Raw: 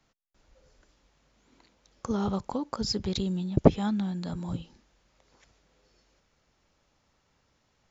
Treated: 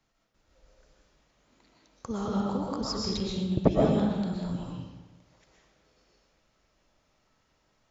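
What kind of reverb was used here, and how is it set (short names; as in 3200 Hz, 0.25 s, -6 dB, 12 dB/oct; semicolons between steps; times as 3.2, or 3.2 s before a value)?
digital reverb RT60 1.2 s, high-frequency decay 0.75×, pre-delay 85 ms, DRR -3.5 dB; gain -4.5 dB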